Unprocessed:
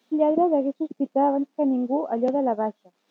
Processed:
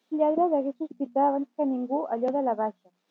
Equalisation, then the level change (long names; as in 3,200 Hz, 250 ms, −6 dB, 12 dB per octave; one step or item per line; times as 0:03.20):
dynamic equaliser 1,200 Hz, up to +6 dB, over −35 dBFS, Q 0.7
mains-hum notches 60/120/180/240 Hz
−5.5 dB